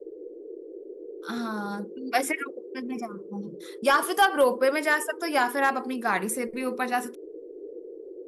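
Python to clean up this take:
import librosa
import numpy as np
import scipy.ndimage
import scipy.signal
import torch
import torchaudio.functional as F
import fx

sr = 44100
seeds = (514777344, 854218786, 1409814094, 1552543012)

y = fx.fix_declip(x, sr, threshold_db=-12.5)
y = fx.noise_reduce(y, sr, print_start_s=7.11, print_end_s=7.61, reduce_db=28.0)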